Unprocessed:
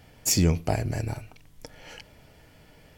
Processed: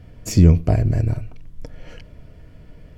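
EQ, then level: Butterworth band-stop 830 Hz, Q 5.3; tilt -3 dB/oct; +1.5 dB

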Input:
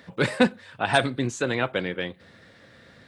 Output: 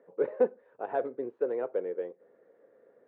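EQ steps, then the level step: ladder band-pass 490 Hz, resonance 65%; air absorption 380 m; +3.5 dB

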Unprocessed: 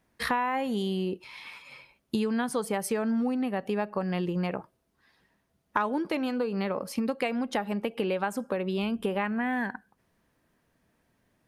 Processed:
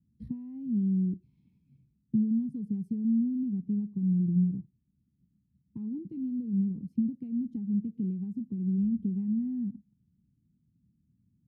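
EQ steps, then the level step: HPF 80 Hz; inverse Chebyshev low-pass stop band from 540 Hz, stop band 50 dB; +7.0 dB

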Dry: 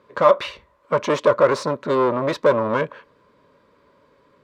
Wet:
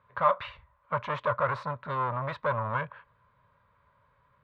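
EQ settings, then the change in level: EQ curve 120 Hz 0 dB, 330 Hz -28 dB, 770 Hz -7 dB, 1400 Hz -5 dB, 3800 Hz -14 dB, 5700 Hz -28 dB; 0.0 dB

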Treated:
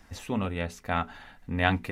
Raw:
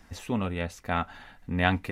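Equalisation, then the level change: notches 60/120/180/240/300/360/420 Hz; 0.0 dB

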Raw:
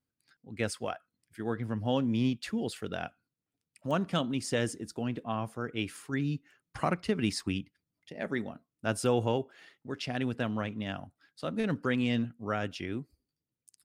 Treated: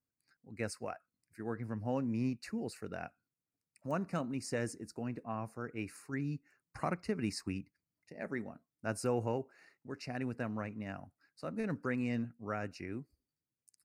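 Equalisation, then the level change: Butterworth band-stop 3300 Hz, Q 2.1; -6.0 dB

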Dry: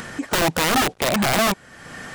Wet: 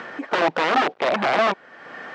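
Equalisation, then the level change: BPF 400–5500 Hz; air absorption 100 m; high shelf 3200 Hz -11.5 dB; +3.5 dB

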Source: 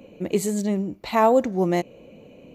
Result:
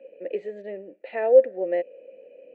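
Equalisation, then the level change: vowel filter e; air absorption 150 m; three-band isolator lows -15 dB, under 250 Hz, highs -12 dB, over 2900 Hz; +7.0 dB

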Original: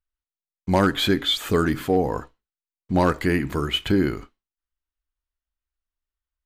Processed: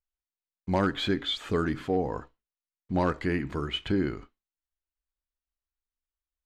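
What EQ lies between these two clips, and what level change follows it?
air absorption 79 m; -6.5 dB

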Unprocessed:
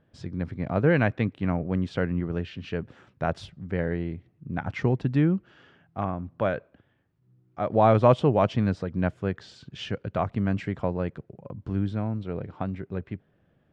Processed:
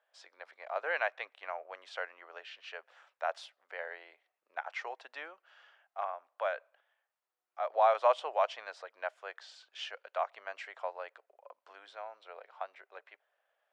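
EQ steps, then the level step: steep high-pass 610 Hz 36 dB/oct; -4.0 dB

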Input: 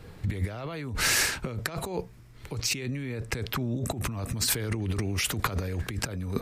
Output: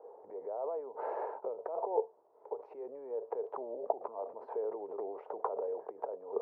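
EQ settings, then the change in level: Chebyshev band-pass 430–930 Hz, order 3; +4.0 dB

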